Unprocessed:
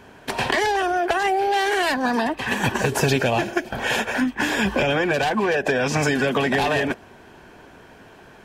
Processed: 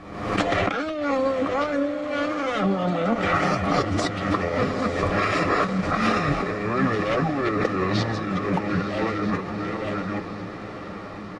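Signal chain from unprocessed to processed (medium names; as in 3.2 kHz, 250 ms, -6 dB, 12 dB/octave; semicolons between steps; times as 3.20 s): chunks repeated in reverse 581 ms, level -14 dB; comb 7.3 ms, depth 40%; compressor with a negative ratio -23 dBFS, ratio -0.5; word length cut 10-bit, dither none; speed mistake 45 rpm record played at 33 rpm; distance through air 86 m; on a send: echo that smears into a reverb 943 ms, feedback 64%, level -10.5 dB; on the sum: swell ahead of each attack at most 60 dB/s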